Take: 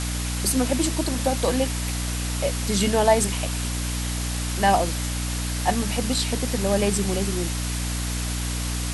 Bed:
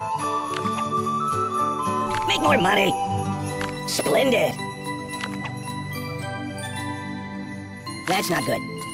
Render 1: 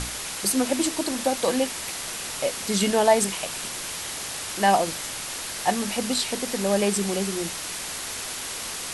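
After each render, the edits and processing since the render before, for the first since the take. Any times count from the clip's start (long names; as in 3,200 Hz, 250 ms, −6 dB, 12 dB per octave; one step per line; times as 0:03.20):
mains-hum notches 60/120/180/240/300 Hz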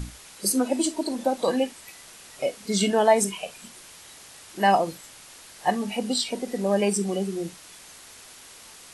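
noise reduction from a noise print 14 dB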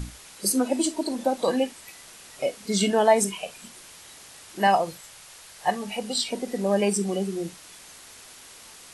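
0:04.67–0:06.18: parametric band 270 Hz −8.5 dB 0.84 octaves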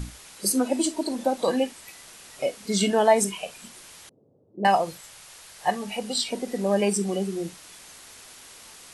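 0:04.09–0:04.65: elliptic band-pass filter 100–510 Hz, stop band 60 dB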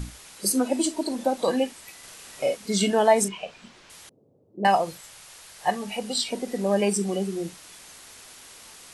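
0:01.99–0:02.57: double-tracking delay 43 ms −2.5 dB
0:03.28–0:03.90: high-frequency loss of the air 140 metres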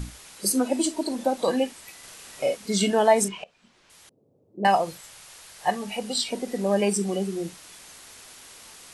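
0:03.44–0:04.62: fade in, from −19.5 dB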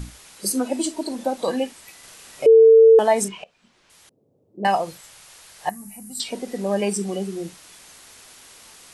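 0:02.46–0:02.99: beep over 449 Hz −7 dBFS
0:05.69–0:06.20: drawn EQ curve 120 Hz 0 dB, 330 Hz −8 dB, 470 Hz −27 dB, 690 Hz −16 dB, 2,100 Hz −13 dB, 3,300 Hz −26 dB, 12,000 Hz +11 dB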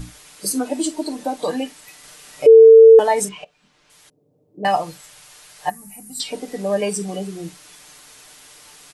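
comb filter 6.7 ms, depth 60%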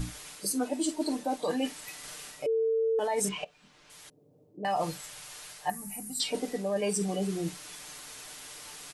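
brickwall limiter −12 dBFS, peak gain reduction 9 dB
reversed playback
downward compressor 6 to 1, threshold −27 dBFS, peak gain reduction 12 dB
reversed playback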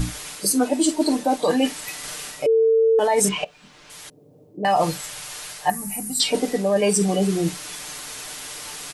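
level +10.5 dB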